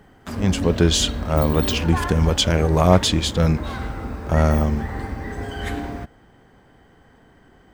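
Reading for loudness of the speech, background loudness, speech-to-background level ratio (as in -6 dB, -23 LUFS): -20.0 LUFS, -28.5 LUFS, 8.5 dB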